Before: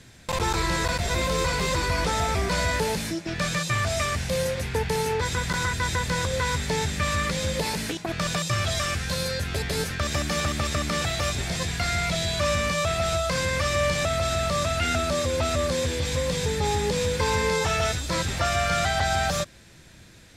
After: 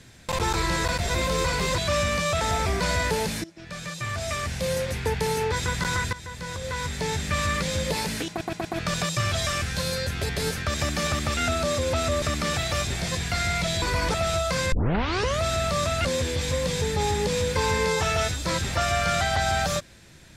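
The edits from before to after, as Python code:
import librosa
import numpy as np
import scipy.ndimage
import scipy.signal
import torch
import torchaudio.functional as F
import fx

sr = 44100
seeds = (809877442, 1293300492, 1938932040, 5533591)

y = fx.edit(x, sr, fx.swap(start_s=1.78, length_s=0.32, other_s=12.3, other_length_s=0.63),
    fx.fade_in_from(start_s=3.13, length_s=1.41, floor_db=-18.0),
    fx.fade_in_from(start_s=5.82, length_s=1.25, floor_db=-16.0),
    fx.stutter(start_s=7.98, slice_s=0.12, count=4),
    fx.tape_start(start_s=13.51, length_s=0.7),
    fx.move(start_s=14.84, length_s=0.85, to_s=10.7), tone=tone)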